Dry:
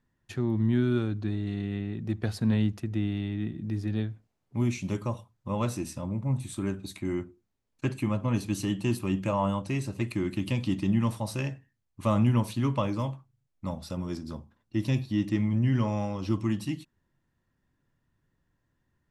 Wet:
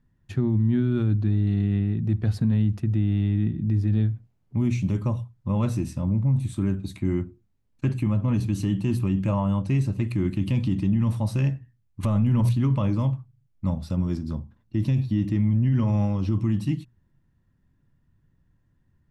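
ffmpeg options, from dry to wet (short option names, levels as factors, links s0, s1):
-filter_complex "[0:a]asplit=3[s0][s1][s2];[s0]atrim=end=12.032[s3];[s1]atrim=start=12.028:end=12.492,asetpts=PTS-STARTPTS,volume=2.99[s4];[s2]atrim=start=12.488[s5];[s3][s4]acrossfade=d=0.004:c1=hsin:c2=hsin[s6];[s6][s5]acrossfade=d=0.004:c1=hsin:c2=hsin,bass=f=250:g=12,treble=f=4000:g=-4,bandreject=f=60:t=h:w=6,bandreject=f=120:t=h:w=6,alimiter=limit=0.178:level=0:latency=1:release=34"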